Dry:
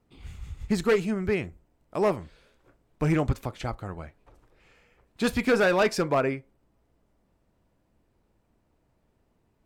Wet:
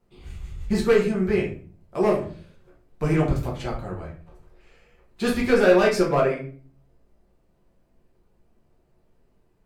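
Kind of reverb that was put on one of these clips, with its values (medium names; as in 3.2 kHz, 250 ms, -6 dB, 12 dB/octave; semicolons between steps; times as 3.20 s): simulated room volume 36 m³, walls mixed, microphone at 0.9 m; trim -3 dB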